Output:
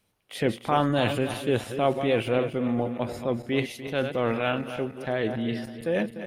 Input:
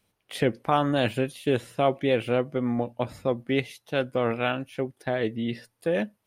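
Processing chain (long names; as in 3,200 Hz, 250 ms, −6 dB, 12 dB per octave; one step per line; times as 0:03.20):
feedback delay that plays each chunk backwards 149 ms, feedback 60%, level −11 dB
transient designer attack −3 dB, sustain +4 dB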